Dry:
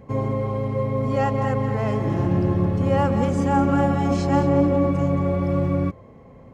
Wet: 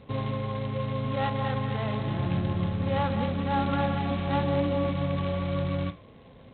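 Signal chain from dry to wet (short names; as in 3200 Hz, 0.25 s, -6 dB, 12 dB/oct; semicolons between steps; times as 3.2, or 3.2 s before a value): flutter echo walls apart 8.9 m, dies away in 0.22 s; dynamic EQ 360 Hz, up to -8 dB, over -35 dBFS, Q 1.4; gain -5 dB; G.726 16 kbps 8000 Hz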